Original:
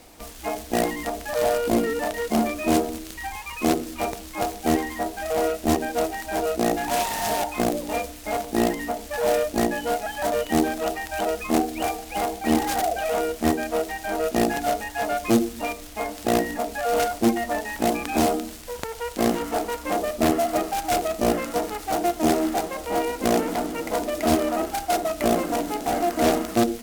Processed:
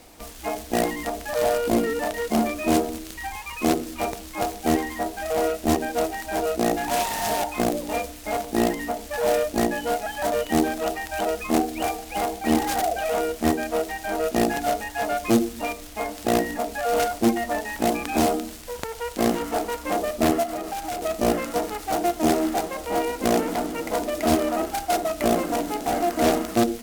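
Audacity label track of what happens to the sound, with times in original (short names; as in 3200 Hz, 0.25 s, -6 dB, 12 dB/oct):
20.430000	21.020000	compressor, threshold -26 dBFS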